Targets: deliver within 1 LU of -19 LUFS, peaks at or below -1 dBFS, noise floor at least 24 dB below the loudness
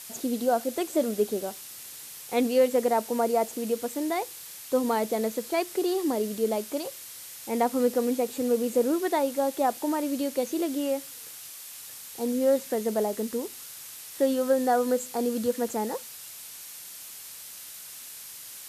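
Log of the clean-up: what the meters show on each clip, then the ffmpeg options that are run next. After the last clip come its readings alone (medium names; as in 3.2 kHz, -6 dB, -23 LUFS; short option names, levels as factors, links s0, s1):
noise floor -43 dBFS; noise floor target -52 dBFS; loudness -27.5 LUFS; peak level -11.5 dBFS; loudness target -19.0 LUFS
-> -af "afftdn=nr=9:nf=-43"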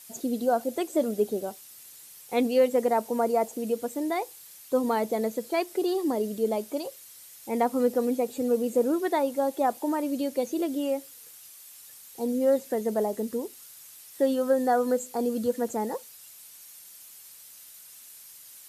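noise floor -49 dBFS; noise floor target -52 dBFS
-> -af "afftdn=nr=6:nf=-49"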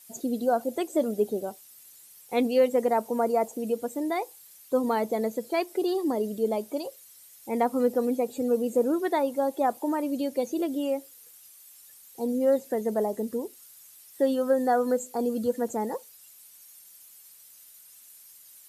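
noise floor -52 dBFS; loudness -27.5 LUFS; peak level -12.0 dBFS; loudness target -19.0 LUFS
-> -af "volume=2.66"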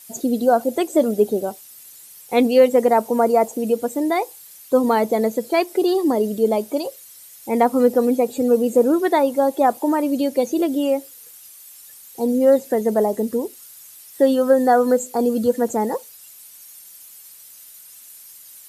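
loudness -19.0 LUFS; peak level -3.5 dBFS; noise floor -44 dBFS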